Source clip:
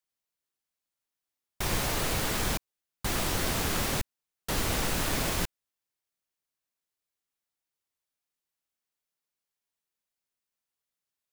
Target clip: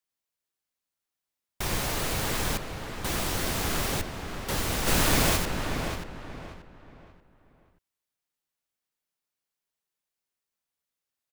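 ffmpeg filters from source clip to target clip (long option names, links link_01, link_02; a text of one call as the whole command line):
ffmpeg -i in.wav -filter_complex "[0:a]asplit=3[link_01][link_02][link_03];[link_01]afade=type=out:start_time=4.86:duration=0.02[link_04];[link_02]acontrast=63,afade=type=in:start_time=4.86:duration=0.02,afade=type=out:start_time=5.36:duration=0.02[link_05];[link_03]afade=type=in:start_time=5.36:duration=0.02[link_06];[link_04][link_05][link_06]amix=inputs=3:normalize=0,asplit=2[link_07][link_08];[link_08]adelay=583,lowpass=frequency=2700:poles=1,volume=-6dB,asplit=2[link_09][link_10];[link_10]adelay=583,lowpass=frequency=2700:poles=1,volume=0.32,asplit=2[link_11][link_12];[link_12]adelay=583,lowpass=frequency=2700:poles=1,volume=0.32,asplit=2[link_13][link_14];[link_14]adelay=583,lowpass=frequency=2700:poles=1,volume=0.32[link_15];[link_07][link_09][link_11][link_13][link_15]amix=inputs=5:normalize=0" out.wav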